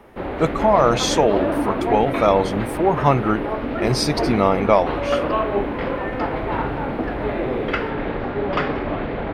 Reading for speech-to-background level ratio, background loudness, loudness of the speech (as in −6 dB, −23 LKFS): 4.0 dB, −24.0 LKFS, −20.0 LKFS